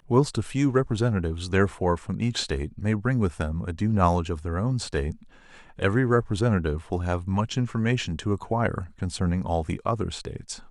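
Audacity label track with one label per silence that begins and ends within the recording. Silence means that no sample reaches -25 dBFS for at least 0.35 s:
5.100000	5.820000	silence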